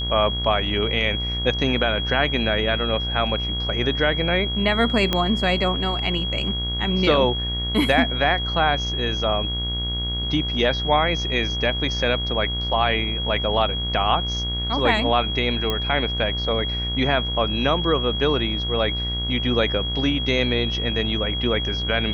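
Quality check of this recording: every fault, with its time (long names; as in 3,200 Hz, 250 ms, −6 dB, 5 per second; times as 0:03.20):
mains buzz 60 Hz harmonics 39 −28 dBFS
whistle 3,300 Hz −26 dBFS
0:05.13: click −7 dBFS
0:15.70: click −10 dBFS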